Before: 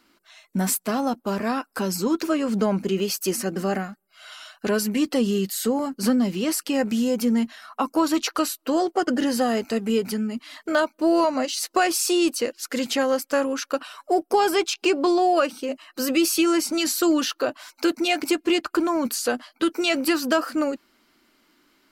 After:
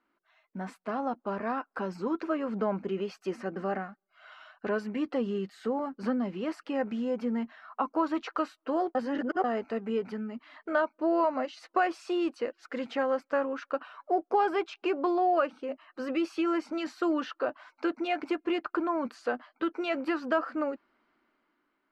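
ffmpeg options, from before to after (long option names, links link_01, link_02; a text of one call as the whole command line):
ffmpeg -i in.wav -filter_complex "[0:a]asplit=3[link_01][link_02][link_03];[link_01]atrim=end=8.952[link_04];[link_02]atrim=start=8.948:end=9.442,asetpts=PTS-STARTPTS,areverse[link_05];[link_03]atrim=start=9.438[link_06];[link_04][link_05]acrossfade=duration=0.004:curve1=hsin:curve2=hsin[link_07];[link_07][link_06]acrossfade=duration=0.004:curve1=hsin:curve2=hsin,lowpass=1500,lowshelf=frequency=410:gain=-10.5,dynaudnorm=framelen=170:gausssize=9:maxgain=6.5dB,volume=-8.5dB" out.wav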